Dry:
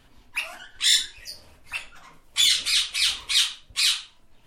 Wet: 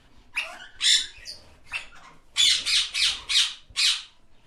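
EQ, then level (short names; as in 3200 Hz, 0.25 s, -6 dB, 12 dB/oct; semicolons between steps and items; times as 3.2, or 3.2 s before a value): LPF 9000 Hz 12 dB/oct; 0.0 dB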